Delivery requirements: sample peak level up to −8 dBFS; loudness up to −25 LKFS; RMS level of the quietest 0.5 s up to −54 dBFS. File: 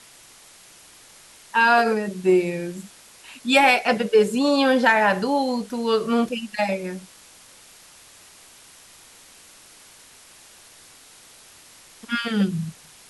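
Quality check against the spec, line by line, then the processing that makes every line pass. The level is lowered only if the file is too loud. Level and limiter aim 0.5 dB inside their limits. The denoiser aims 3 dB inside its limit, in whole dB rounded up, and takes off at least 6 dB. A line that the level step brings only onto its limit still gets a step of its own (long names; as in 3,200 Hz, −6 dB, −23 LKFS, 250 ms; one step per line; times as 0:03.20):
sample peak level −5.5 dBFS: out of spec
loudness −20.5 LKFS: out of spec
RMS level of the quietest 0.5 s −49 dBFS: out of spec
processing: broadband denoise 6 dB, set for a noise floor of −49 dBFS
level −5 dB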